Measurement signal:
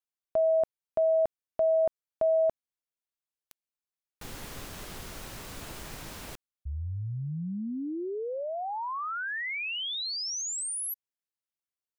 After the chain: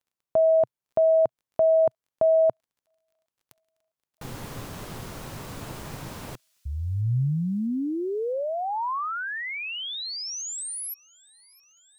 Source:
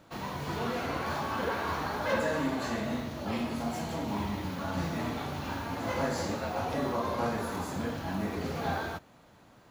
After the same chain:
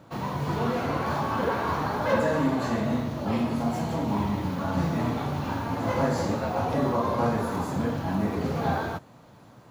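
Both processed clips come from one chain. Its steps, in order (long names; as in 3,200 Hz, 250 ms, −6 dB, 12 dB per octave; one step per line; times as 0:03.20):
octave-band graphic EQ 125/250/500/1,000 Hz +10/+4/+4/+5 dB
surface crackle 21 per second −56 dBFS
on a send: delay with a high-pass on its return 656 ms, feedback 75%, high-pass 3,800 Hz, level −24 dB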